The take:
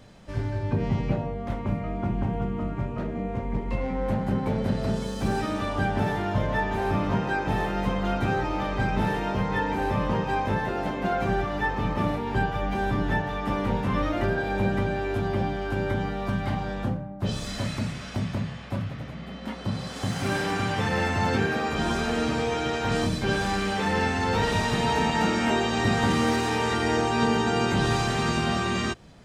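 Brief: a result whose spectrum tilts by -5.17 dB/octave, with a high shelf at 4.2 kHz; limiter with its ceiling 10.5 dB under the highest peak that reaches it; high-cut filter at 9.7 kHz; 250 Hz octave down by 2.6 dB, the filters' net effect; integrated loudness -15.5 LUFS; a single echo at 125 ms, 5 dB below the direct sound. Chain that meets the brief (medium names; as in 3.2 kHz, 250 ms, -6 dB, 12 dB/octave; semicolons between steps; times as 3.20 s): low-pass 9.7 kHz; peaking EQ 250 Hz -3.5 dB; treble shelf 4.2 kHz -8.5 dB; peak limiter -22.5 dBFS; delay 125 ms -5 dB; trim +15 dB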